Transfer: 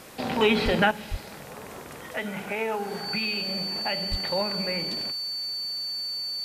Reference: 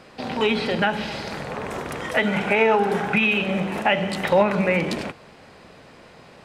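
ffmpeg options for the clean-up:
-filter_complex "[0:a]bandreject=f=4.5k:w=30,asplit=3[a][b][c];[a]afade=t=out:st=0.64:d=0.02[d];[b]highpass=f=140:w=0.5412,highpass=f=140:w=1.3066,afade=t=in:st=0.64:d=0.02,afade=t=out:st=0.76:d=0.02[e];[c]afade=t=in:st=0.76:d=0.02[f];[d][e][f]amix=inputs=3:normalize=0,asplit=3[g][h][i];[g]afade=t=out:st=1.1:d=0.02[j];[h]highpass=f=140:w=0.5412,highpass=f=140:w=1.3066,afade=t=in:st=1.1:d=0.02,afade=t=out:st=1.22:d=0.02[k];[i]afade=t=in:st=1.22:d=0.02[l];[j][k][l]amix=inputs=3:normalize=0,asplit=3[m][n][o];[m]afade=t=out:st=4.1:d=0.02[p];[n]highpass=f=140:w=0.5412,highpass=f=140:w=1.3066,afade=t=in:st=4.1:d=0.02,afade=t=out:st=4.22:d=0.02[q];[o]afade=t=in:st=4.22:d=0.02[r];[p][q][r]amix=inputs=3:normalize=0,afwtdn=0.0032,asetnsamples=n=441:p=0,asendcmd='0.91 volume volume 11dB',volume=0dB"

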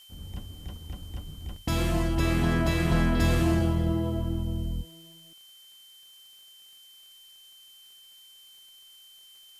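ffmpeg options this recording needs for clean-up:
-af "adeclick=t=4,bandreject=f=3.1k:w=30,agate=range=-21dB:threshold=-45dB"

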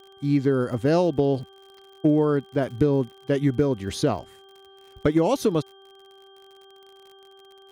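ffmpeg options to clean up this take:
-af "adeclick=t=4,bandreject=f=389.2:t=h:w=4,bandreject=f=778.4:t=h:w=4,bandreject=f=1.1676k:t=h:w=4,bandreject=f=1.5568k:t=h:w=4,bandreject=f=3.2k:w=30"

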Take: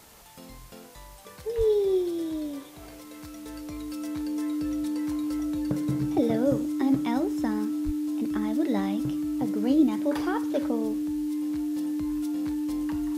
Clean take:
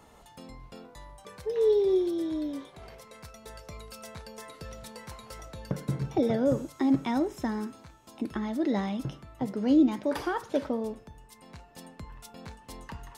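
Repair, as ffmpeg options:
-filter_complex "[0:a]bandreject=f=300:w=30,asplit=3[a][b][c];[a]afade=t=out:st=1.57:d=0.02[d];[b]highpass=f=140:w=0.5412,highpass=f=140:w=1.3066,afade=t=in:st=1.57:d=0.02,afade=t=out:st=1.69:d=0.02[e];[c]afade=t=in:st=1.69:d=0.02[f];[d][e][f]amix=inputs=3:normalize=0,asplit=3[g][h][i];[g]afade=t=out:st=7.85:d=0.02[j];[h]highpass=f=140:w=0.5412,highpass=f=140:w=1.3066,afade=t=in:st=7.85:d=0.02,afade=t=out:st=7.97:d=0.02[k];[i]afade=t=in:st=7.97:d=0.02[l];[j][k][l]amix=inputs=3:normalize=0,afwtdn=0.0022"

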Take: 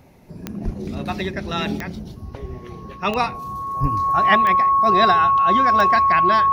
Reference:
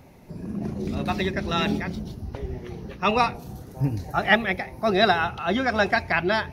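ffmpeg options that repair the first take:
-filter_complex "[0:a]adeclick=t=4,bandreject=f=1.1k:w=30,asplit=3[a][b][c];[a]afade=t=out:st=0.64:d=0.02[d];[b]highpass=f=140:w=0.5412,highpass=f=140:w=1.3066,afade=t=in:st=0.64:d=0.02,afade=t=out:st=0.76:d=0.02[e];[c]afade=t=in:st=0.76:d=0.02[f];[d][e][f]amix=inputs=3:normalize=0,asplit=3[g][h][i];[g]afade=t=out:st=3.81:d=0.02[j];[h]highpass=f=140:w=0.5412,highpass=f=140:w=1.3066,afade=t=in:st=3.81:d=0.02,afade=t=out:st=3.93:d=0.02[k];[i]afade=t=in:st=3.93:d=0.02[l];[j][k][l]amix=inputs=3:normalize=0"

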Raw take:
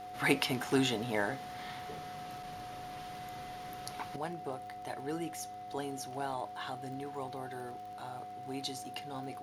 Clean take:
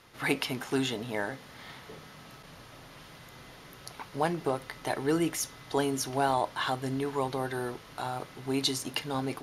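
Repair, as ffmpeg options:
-af "adeclick=t=4,bandreject=f=103.4:t=h:w=4,bandreject=f=206.8:t=h:w=4,bandreject=f=310.2:t=h:w=4,bandreject=f=413.6:t=h:w=4,bandreject=f=517:t=h:w=4,bandreject=f=730:w=30,asetnsamples=n=441:p=0,asendcmd='4.16 volume volume 11dB',volume=0dB"

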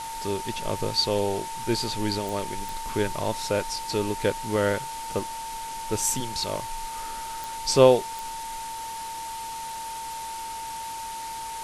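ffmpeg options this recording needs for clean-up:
-af "adeclick=t=4,bandreject=f=900:w=30,afwtdn=0.011"

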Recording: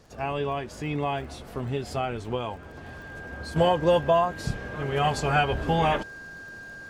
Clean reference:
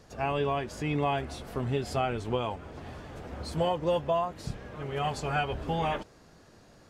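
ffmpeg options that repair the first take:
-af "adeclick=t=4,bandreject=f=1.6k:w=30,asetnsamples=n=441:p=0,asendcmd='3.56 volume volume -6.5dB',volume=0dB"

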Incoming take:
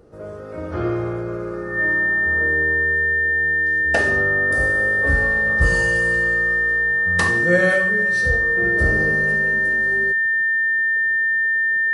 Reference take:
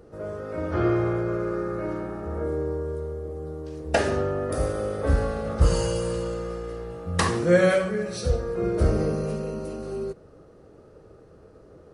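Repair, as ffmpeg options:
-af "bandreject=f=1.8k:w=30"

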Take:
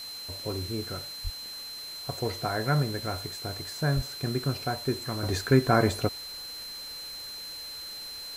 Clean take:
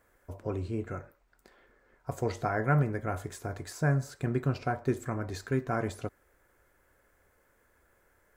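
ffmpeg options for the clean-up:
-filter_complex "[0:a]bandreject=f=4.1k:w=30,asplit=3[a][b][c];[a]afade=t=out:st=1.23:d=0.02[d];[b]highpass=f=140:w=0.5412,highpass=f=140:w=1.3066,afade=t=in:st=1.23:d=0.02,afade=t=out:st=1.35:d=0.02[e];[c]afade=t=in:st=1.35:d=0.02[f];[d][e][f]amix=inputs=3:normalize=0,asplit=3[g][h][i];[g]afade=t=out:st=3.95:d=0.02[j];[h]highpass=f=140:w=0.5412,highpass=f=140:w=1.3066,afade=t=in:st=3.95:d=0.02,afade=t=out:st=4.07:d=0.02[k];[i]afade=t=in:st=4.07:d=0.02[l];[j][k][l]amix=inputs=3:normalize=0,afwtdn=0.005,asetnsamples=n=441:p=0,asendcmd='5.23 volume volume -9dB',volume=0dB"

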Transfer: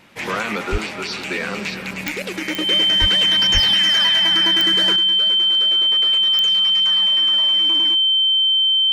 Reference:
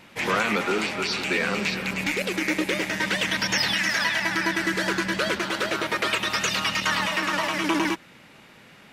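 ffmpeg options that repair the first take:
-filter_complex "[0:a]adeclick=t=4,bandreject=f=3.1k:w=30,asplit=3[a][b][c];[a]afade=t=out:st=0.71:d=0.02[d];[b]highpass=f=140:w=0.5412,highpass=f=140:w=1.3066,afade=t=in:st=0.71:d=0.02,afade=t=out:st=0.83:d=0.02[e];[c]afade=t=in:st=0.83:d=0.02[f];[d][e][f]amix=inputs=3:normalize=0,asplit=3[g][h][i];[g]afade=t=out:st=3:d=0.02[j];[h]highpass=f=140:w=0.5412,highpass=f=140:w=1.3066,afade=t=in:st=3:d=0.02,afade=t=out:st=3.12:d=0.02[k];[i]afade=t=in:st=3.12:d=0.02[l];[j][k][l]amix=inputs=3:normalize=0,asplit=3[m][n][o];[m]afade=t=out:st=3.53:d=0.02[p];[n]highpass=f=140:w=0.5412,highpass=f=140:w=1.3066,afade=t=in:st=3.53:d=0.02,afade=t=out:st=3.65:d=0.02[q];[o]afade=t=in:st=3.65:d=0.02[r];[p][q][r]amix=inputs=3:normalize=0,asetnsamples=n=441:p=0,asendcmd='4.96 volume volume 11.5dB',volume=0dB"

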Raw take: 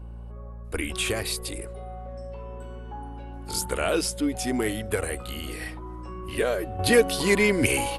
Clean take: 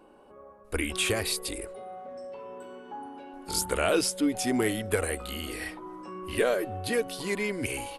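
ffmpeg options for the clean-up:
-af "bandreject=f=57.4:t=h:w=4,bandreject=f=114.8:t=h:w=4,bandreject=f=172.2:t=h:w=4,bandreject=f=229.6:t=h:w=4,asetnsamples=n=441:p=0,asendcmd='6.79 volume volume -9.5dB',volume=0dB"

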